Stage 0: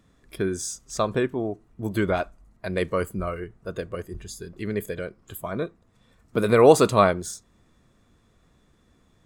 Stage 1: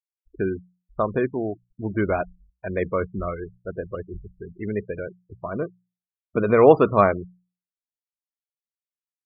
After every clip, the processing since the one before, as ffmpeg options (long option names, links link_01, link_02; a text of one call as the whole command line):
ffmpeg -i in.wav -filter_complex "[0:a]acrossover=split=2800[link_01][link_02];[link_02]acompressor=threshold=-51dB:ratio=4:attack=1:release=60[link_03];[link_01][link_03]amix=inputs=2:normalize=0,afftfilt=real='re*gte(hypot(re,im),0.0282)':imag='im*gte(hypot(re,im),0.0282)':win_size=1024:overlap=0.75,bandreject=frequency=60:width_type=h:width=6,bandreject=frequency=120:width_type=h:width=6,bandreject=frequency=180:width_type=h:width=6,volume=1dB" out.wav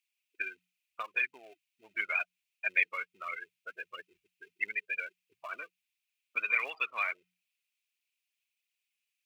ffmpeg -i in.wav -af "acompressor=threshold=-27dB:ratio=4,aphaser=in_gain=1:out_gain=1:delay=4.3:decay=0.42:speed=1.5:type=triangular,highpass=frequency=2500:width_type=q:width=5.9,volume=6dB" out.wav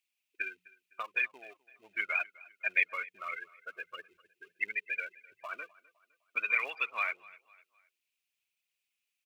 ffmpeg -i in.wav -af "aecho=1:1:255|510|765:0.0794|0.0326|0.0134" out.wav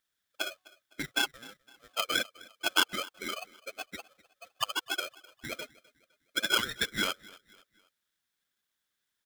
ffmpeg -i in.wav -af "aeval=exprs='val(0)*sgn(sin(2*PI*920*n/s))':channel_layout=same,volume=2dB" out.wav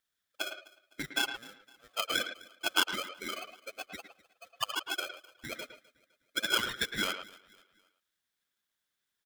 ffmpeg -i in.wav -filter_complex "[0:a]asplit=2[link_01][link_02];[link_02]adelay=110,highpass=300,lowpass=3400,asoftclip=type=hard:threshold=-20.5dB,volume=-8dB[link_03];[link_01][link_03]amix=inputs=2:normalize=0,volume=-2dB" out.wav